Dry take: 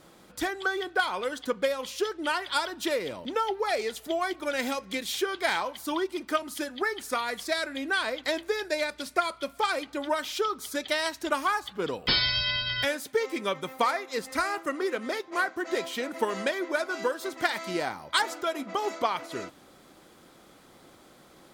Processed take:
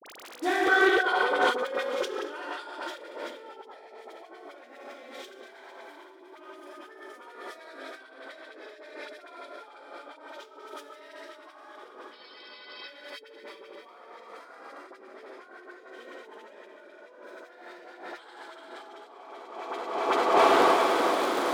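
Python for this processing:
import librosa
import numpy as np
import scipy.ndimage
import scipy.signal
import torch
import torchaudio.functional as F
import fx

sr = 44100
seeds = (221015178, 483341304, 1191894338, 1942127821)

p1 = fx.fade_in_head(x, sr, length_s=3.84)
p2 = p1 + fx.echo_feedback(p1, sr, ms=389, feedback_pct=54, wet_db=-6, dry=0)
p3 = fx.rev_plate(p2, sr, seeds[0], rt60_s=2.2, hf_ratio=0.95, predelay_ms=0, drr_db=-9.0)
p4 = fx.dmg_crackle(p3, sr, seeds[1], per_s=53.0, level_db=-34.0)
p5 = fx.high_shelf(p4, sr, hz=3800.0, db=-11.0)
p6 = fx.over_compress(p5, sr, threshold_db=-35.0, ratio=-0.5)
p7 = scipy.signal.sosfilt(scipy.signal.butter(4, 310.0, 'highpass', fs=sr, output='sos'), p6)
p8 = fx.dispersion(p7, sr, late='highs', ms=51.0, hz=1200.0)
p9 = fx.doppler_dist(p8, sr, depth_ms=0.11)
y = F.gain(torch.from_numpy(p9), 3.5).numpy()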